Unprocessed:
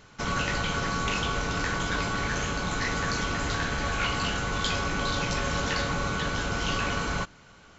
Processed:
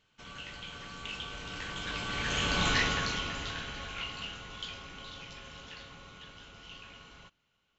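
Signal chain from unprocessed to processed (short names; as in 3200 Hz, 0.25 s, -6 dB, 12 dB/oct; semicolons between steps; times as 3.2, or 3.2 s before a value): Doppler pass-by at 2.66, 8 m/s, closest 1.8 m; bell 3000 Hz +11.5 dB 0.75 oct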